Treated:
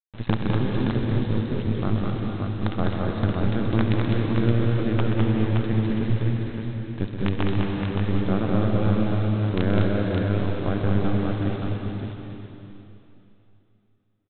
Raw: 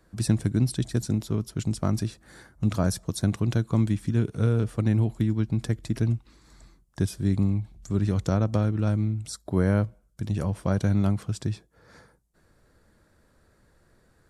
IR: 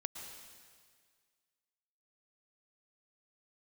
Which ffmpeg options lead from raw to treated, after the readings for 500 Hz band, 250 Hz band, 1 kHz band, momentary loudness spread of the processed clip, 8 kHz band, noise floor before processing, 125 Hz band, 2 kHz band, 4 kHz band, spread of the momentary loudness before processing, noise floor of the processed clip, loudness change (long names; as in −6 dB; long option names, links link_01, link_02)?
+5.0 dB, +3.0 dB, +6.5 dB, 8 LU, below −40 dB, −64 dBFS, +1.5 dB, +7.0 dB, +3.5 dB, 7 LU, −60 dBFS, +2.0 dB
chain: -filter_complex "[0:a]aresample=8000,acrusher=bits=4:dc=4:mix=0:aa=0.000001,aresample=44100,aecho=1:1:69|128|205|570:0.178|0.376|0.668|0.596[link_01];[1:a]atrim=start_sample=2205,asetrate=26460,aresample=44100[link_02];[link_01][link_02]afir=irnorm=-1:irlink=0"